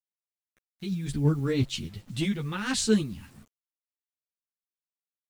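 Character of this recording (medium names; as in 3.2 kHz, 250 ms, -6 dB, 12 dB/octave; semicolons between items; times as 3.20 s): tremolo saw up 4.3 Hz, depth 40%; a quantiser's noise floor 10-bit, dither none; a shimmering, thickened sound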